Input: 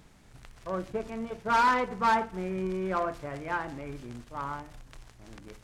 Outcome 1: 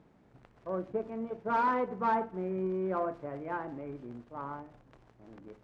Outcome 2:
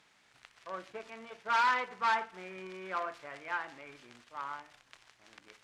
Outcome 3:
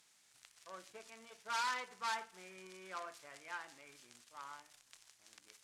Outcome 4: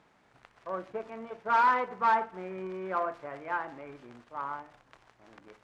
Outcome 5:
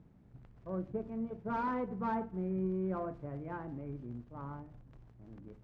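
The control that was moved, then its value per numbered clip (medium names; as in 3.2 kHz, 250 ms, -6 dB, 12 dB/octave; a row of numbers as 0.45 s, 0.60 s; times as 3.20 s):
band-pass filter, frequency: 380 Hz, 2.6 kHz, 7.9 kHz, 1 kHz, 150 Hz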